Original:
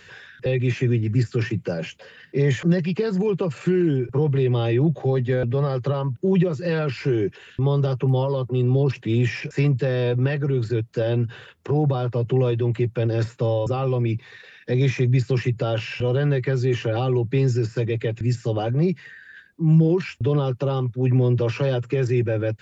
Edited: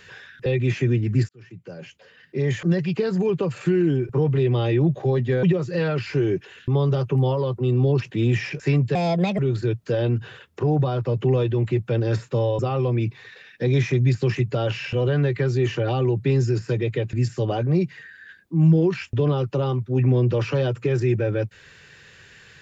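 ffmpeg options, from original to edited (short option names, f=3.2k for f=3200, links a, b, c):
-filter_complex "[0:a]asplit=5[a][b][c][d][e];[a]atrim=end=1.29,asetpts=PTS-STARTPTS,afade=t=out:st=1.286:d=0.004:c=hsin[f];[b]atrim=start=1.29:end=5.432,asetpts=PTS-STARTPTS,afade=t=in:d=1.68[g];[c]atrim=start=6.338:end=9.864[h];[d]atrim=start=9.86:end=10.46,asetpts=PTS-STARTPTS,asetrate=60858,aresample=44100[i];[e]atrim=start=10.456[j];[f][g]concat=n=2:v=0:a=1[k];[k][h]acrossfade=d=0.004:c1=hsin:c2=hsin[l];[l][i]acrossfade=d=0.004:c1=hsin:c2=hsin[m];[m][j]acrossfade=d=0.004:c1=hsin:c2=hsin"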